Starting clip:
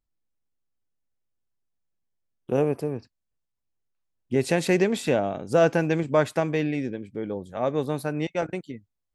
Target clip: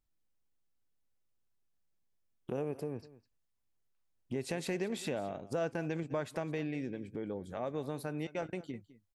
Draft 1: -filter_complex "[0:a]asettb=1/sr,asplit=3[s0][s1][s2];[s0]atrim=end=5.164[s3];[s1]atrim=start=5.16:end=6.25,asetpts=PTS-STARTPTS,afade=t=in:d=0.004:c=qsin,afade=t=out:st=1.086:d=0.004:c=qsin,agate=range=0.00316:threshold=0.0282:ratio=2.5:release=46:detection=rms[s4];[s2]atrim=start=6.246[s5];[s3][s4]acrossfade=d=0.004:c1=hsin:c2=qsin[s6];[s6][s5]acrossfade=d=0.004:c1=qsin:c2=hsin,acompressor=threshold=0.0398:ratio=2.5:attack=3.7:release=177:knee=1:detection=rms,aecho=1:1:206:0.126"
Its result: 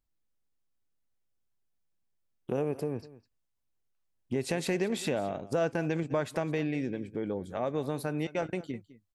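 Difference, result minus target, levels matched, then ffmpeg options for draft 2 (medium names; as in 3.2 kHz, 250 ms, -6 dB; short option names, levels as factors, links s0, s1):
compression: peak gain reduction -5.5 dB
-filter_complex "[0:a]asettb=1/sr,asplit=3[s0][s1][s2];[s0]atrim=end=5.164[s3];[s1]atrim=start=5.16:end=6.25,asetpts=PTS-STARTPTS,afade=t=in:d=0.004:c=qsin,afade=t=out:st=1.086:d=0.004:c=qsin,agate=range=0.00316:threshold=0.0282:ratio=2.5:release=46:detection=rms[s4];[s2]atrim=start=6.246[s5];[s3][s4]acrossfade=d=0.004:c1=hsin:c2=qsin[s6];[s6][s5]acrossfade=d=0.004:c1=qsin:c2=hsin,acompressor=threshold=0.0133:ratio=2.5:attack=3.7:release=177:knee=1:detection=rms,aecho=1:1:206:0.126"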